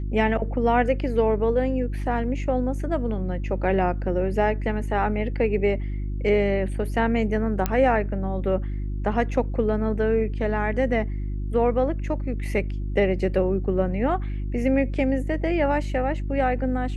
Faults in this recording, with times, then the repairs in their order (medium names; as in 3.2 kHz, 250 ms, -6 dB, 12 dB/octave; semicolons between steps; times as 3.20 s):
hum 50 Hz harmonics 7 -28 dBFS
7.66 s: pop -9 dBFS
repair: de-click; de-hum 50 Hz, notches 7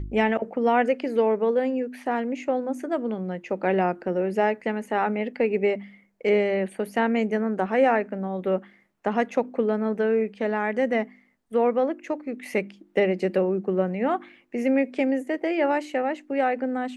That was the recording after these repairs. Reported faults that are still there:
nothing left